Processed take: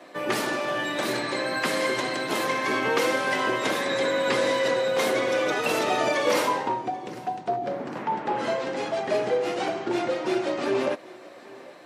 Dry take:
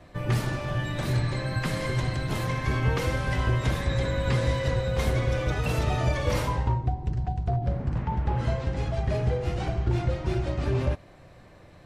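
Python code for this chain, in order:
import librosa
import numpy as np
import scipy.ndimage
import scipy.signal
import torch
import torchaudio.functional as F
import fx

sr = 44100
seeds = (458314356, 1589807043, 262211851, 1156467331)

p1 = scipy.signal.sosfilt(scipy.signal.butter(4, 270.0, 'highpass', fs=sr, output='sos'), x)
p2 = p1 + fx.echo_feedback(p1, sr, ms=787, feedback_pct=33, wet_db=-22.0, dry=0)
y = p2 * 10.0 ** (7.0 / 20.0)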